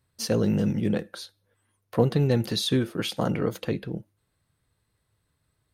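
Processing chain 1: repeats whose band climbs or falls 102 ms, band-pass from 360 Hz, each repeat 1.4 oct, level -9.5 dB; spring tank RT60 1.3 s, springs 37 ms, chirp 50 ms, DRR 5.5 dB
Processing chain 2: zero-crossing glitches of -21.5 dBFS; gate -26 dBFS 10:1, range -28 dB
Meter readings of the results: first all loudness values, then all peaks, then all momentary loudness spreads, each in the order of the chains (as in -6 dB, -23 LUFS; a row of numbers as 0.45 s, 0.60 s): -25.5 LUFS, -25.5 LUFS; -7.5 dBFS, -7.5 dBFS; 14 LU, 19 LU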